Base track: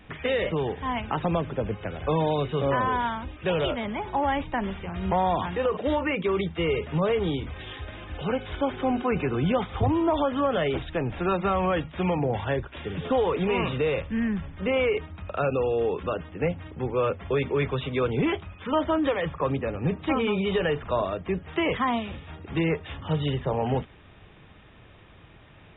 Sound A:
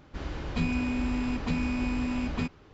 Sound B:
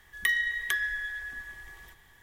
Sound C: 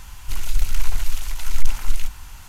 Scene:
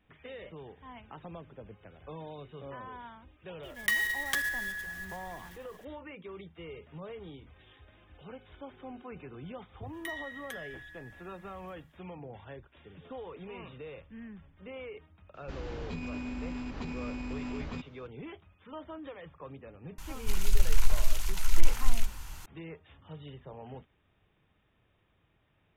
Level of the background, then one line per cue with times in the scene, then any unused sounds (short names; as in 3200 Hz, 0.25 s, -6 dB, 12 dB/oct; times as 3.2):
base track -19.5 dB
3.63 add B -2 dB + block floating point 3-bit
9.8 add B -12 dB, fades 0.10 s + notch comb 170 Hz
15.34 add A -4.5 dB + limiter -25.5 dBFS
19.98 add C -4 dB